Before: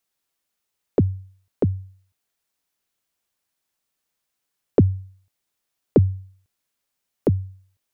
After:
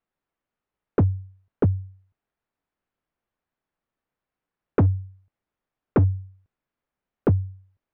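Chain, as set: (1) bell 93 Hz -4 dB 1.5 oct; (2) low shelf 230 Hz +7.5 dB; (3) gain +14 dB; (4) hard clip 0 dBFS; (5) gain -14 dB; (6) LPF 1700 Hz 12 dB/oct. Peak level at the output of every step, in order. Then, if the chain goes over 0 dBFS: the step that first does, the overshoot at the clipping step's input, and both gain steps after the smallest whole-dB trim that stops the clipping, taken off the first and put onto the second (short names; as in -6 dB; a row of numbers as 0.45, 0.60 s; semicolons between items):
-6.0, -4.0, +10.0, 0.0, -14.0, -13.5 dBFS; step 3, 10.0 dB; step 3 +4 dB, step 5 -4 dB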